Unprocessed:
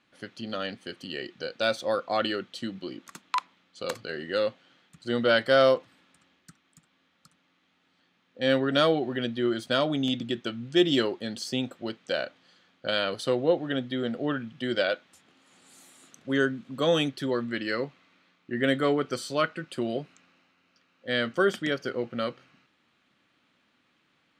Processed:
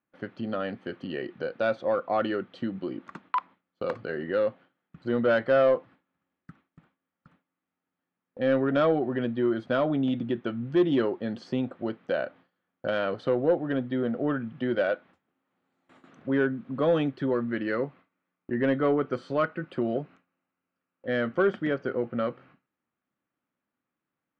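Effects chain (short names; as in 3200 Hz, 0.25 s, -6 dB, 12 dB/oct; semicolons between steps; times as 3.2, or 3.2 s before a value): LPF 1500 Hz 12 dB/oct; gate with hold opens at -51 dBFS; in parallel at +0.5 dB: compressor, threshold -37 dBFS, peak gain reduction 19 dB; on the sum: soft clip -13 dBFS, distortion -21 dB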